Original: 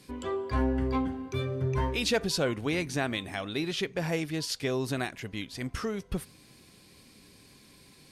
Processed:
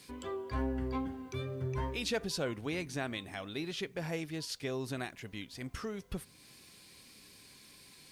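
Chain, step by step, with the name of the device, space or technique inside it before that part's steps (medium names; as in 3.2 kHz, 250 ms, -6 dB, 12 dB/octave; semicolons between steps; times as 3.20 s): noise-reduction cassette on a plain deck (tape noise reduction on one side only encoder only; wow and flutter 21 cents; white noise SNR 38 dB); trim -7 dB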